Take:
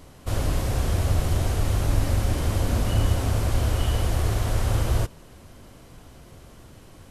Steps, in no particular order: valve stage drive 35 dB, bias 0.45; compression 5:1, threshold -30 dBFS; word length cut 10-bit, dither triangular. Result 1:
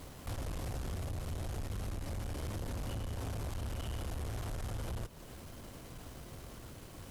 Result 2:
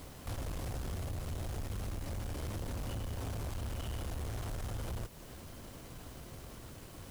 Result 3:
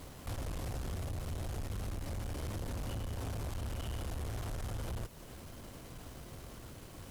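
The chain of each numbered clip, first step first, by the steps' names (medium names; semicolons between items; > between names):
word length cut > compression > valve stage; compression > valve stage > word length cut; compression > word length cut > valve stage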